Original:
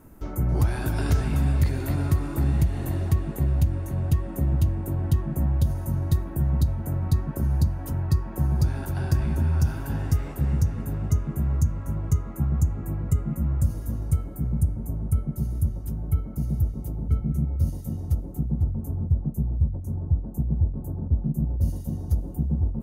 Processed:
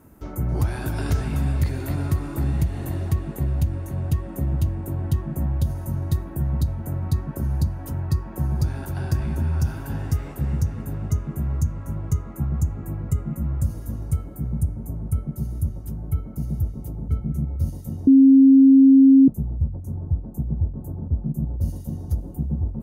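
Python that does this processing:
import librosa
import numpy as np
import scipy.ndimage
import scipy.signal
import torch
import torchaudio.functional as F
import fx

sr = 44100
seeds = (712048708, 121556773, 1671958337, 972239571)

y = fx.edit(x, sr, fx.bleep(start_s=18.07, length_s=1.21, hz=269.0, db=-8.0), tone=tone)
y = scipy.signal.sosfilt(scipy.signal.butter(2, 46.0, 'highpass', fs=sr, output='sos'), y)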